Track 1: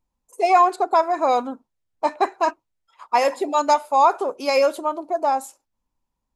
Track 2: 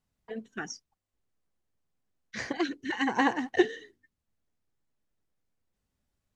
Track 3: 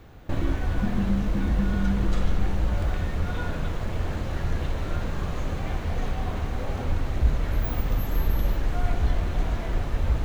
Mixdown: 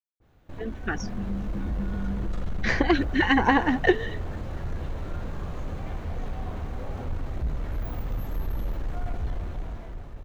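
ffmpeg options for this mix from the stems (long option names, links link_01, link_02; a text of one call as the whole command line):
ffmpeg -i stem1.wav -i stem2.wav -i stem3.wav -filter_complex "[1:a]lowpass=3600,acompressor=threshold=-28dB:ratio=6,adelay=300,volume=1.5dB[link_01];[2:a]asoftclip=type=tanh:threshold=-18dB,adynamicequalizer=threshold=0.00316:dfrequency=1600:dqfactor=0.7:tfrequency=1600:tqfactor=0.7:attack=5:release=100:ratio=0.375:range=2.5:mode=cutabove:tftype=highshelf,adelay=200,volume=-13.5dB[link_02];[link_01][link_02]amix=inputs=2:normalize=0,dynaudnorm=framelen=150:gausssize=13:maxgain=10dB" out.wav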